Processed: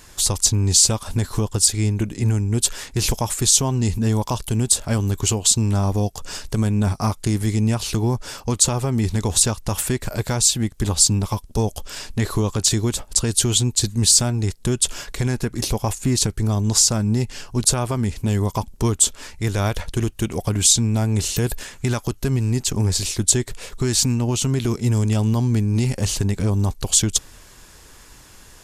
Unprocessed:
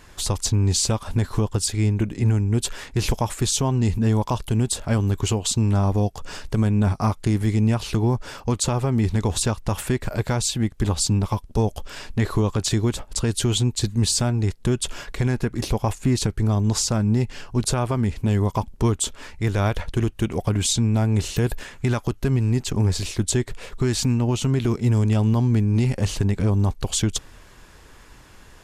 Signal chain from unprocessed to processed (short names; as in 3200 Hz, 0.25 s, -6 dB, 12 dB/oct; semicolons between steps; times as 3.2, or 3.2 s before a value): tone controls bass 0 dB, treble +10 dB